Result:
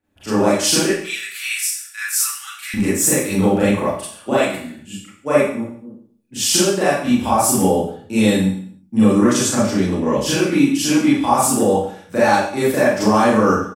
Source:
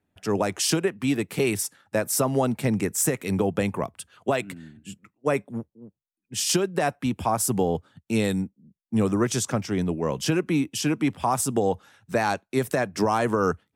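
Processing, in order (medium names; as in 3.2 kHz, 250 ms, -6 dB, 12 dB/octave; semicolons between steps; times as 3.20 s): 0.86–2.74 s: steep high-pass 1.4 kHz 48 dB/octave; comb 3.5 ms, depth 35%; reverberation RT60 0.55 s, pre-delay 29 ms, DRR -10.5 dB; trim -2.5 dB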